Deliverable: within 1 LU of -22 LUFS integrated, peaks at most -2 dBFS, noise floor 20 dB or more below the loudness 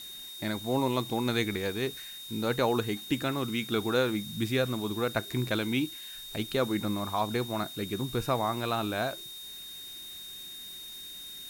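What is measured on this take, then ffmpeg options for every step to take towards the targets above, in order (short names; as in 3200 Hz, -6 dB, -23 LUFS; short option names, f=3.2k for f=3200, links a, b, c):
steady tone 3700 Hz; tone level -42 dBFS; noise floor -44 dBFS; noise floor target -52 dBFS; loudness -31.5 LUFS; peak -13.5 dBFS; loudness target -22.0 LUFS
-> -af "bandreject=f=3.7k:w=30"
-af "afftdn=nr=8:nf=-44"
-af "volume=9.5dB"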